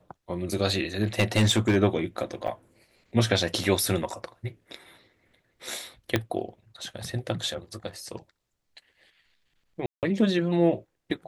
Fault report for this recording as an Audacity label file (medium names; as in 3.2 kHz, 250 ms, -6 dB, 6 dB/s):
1.010000	1.770000	clipped -15.5 dBFS
2.470000	2.480000	dropout 7.4 ms
6.160000	6.160000	pop -9 dBFS
9.860000	10.030000	dropout 168 ms